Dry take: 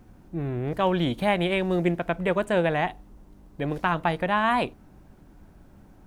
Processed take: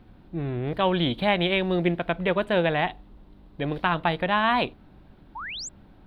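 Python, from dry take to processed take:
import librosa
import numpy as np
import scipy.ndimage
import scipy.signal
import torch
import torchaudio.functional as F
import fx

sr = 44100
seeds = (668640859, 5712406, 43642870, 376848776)

y = fx.high_shelf_res(x, sr, hz=5000.0, db=-10.0, q=3.0)
y = fx.spec_paint(y, sr, seeds[0], shape='rise', start_s=5.35, length_s=0.34, low_hz=820.0, high_hz=8000.0, level_db=-35.0)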